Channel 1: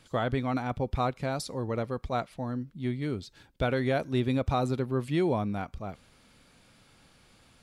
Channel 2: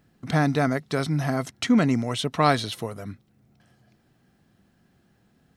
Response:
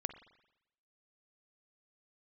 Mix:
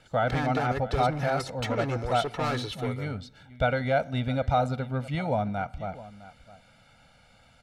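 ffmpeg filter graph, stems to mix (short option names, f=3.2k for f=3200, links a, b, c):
-filter_complex "[0:a]aecho=1:1:1.4:0.93,volume=-1.5dB,asplit=3[a][b][c];[b]volume=-6.5dB[d];[c]volume=-14.5dB[e];[1:a]aecho=1:1:2.3:0.79,volume=24dB,asoftclip=hard,volume=-24dB,volume=-4dB,asplit=2[f][g];[g]volume=-9.5dB[h];[2:a]atrim=start_sample=2205[i];[d][h]amix=inputs=2:normalize=0[j];[j][i]afir=irnorm=-1:irlink=0[k];[e]aecho=0:1:660:1[l];[a][f][k][l]amix=inputs=4:normalize=0,lowpass=f=2.8k:p=1,lowshelf=f=260:g=-5.5"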